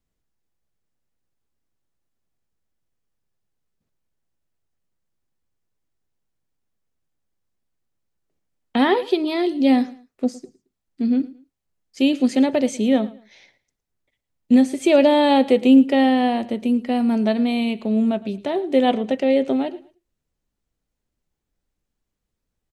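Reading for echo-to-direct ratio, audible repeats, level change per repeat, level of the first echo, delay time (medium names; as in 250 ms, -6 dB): -19.5 dB, 2, -11.0 dB, -20.0 dB, 111 ms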